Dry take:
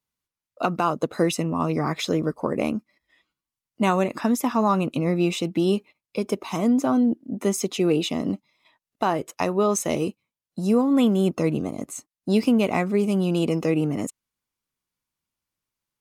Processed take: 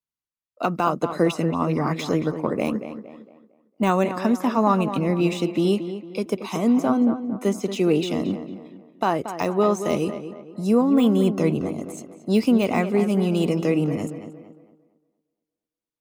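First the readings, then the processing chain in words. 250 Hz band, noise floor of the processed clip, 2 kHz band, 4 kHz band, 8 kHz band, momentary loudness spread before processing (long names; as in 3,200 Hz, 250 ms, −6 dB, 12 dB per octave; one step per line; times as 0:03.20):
+1.5 dB, below −85 dBFS, +0.5 dB, −1.5 dB, −6.5 dB, 9 LU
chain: de-essing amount 80%
tape delay 229 ms, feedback 48%, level −8 dB, low-pass 2,500 Hz
in parallel at −2 dB: downward compressor, threshold −36 dBFS, peak gain reduction 19 dB
on the sum: multiband upward and downward expander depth 40%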